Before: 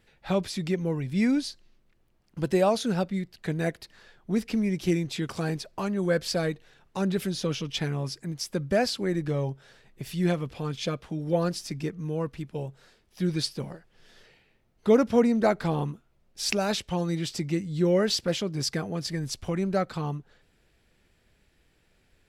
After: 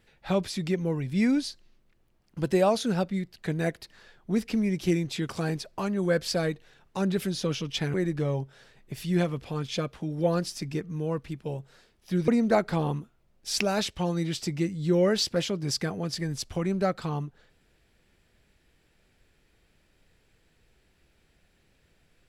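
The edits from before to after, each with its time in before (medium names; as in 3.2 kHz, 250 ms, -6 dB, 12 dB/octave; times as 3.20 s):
7.94–9.03 s: delete
13.37–15.20 s: delete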